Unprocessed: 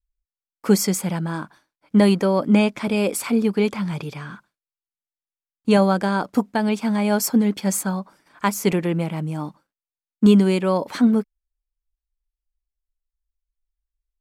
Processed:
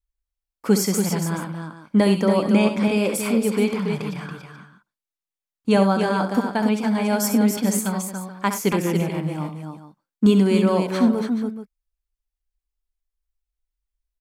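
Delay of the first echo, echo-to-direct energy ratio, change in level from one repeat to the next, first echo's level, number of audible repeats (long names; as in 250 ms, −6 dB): 66 ms, −3.5 dB, repeats not evenly spaced, −9.0 dB, 4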